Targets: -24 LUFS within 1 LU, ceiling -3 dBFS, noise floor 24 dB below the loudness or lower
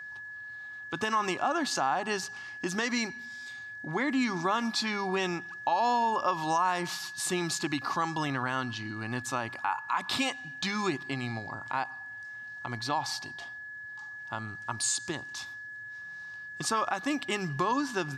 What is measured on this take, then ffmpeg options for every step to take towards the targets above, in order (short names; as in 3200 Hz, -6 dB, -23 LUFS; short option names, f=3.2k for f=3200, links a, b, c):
steady tone 1700 Hz; tone level -40 dBFS; loudness -32.0 LUFS; peak -16.5 dBFS; loudness target -24.0 LUFS
-> -af "bandreject=f=1.7k:w=30"
-af "volume=8dB"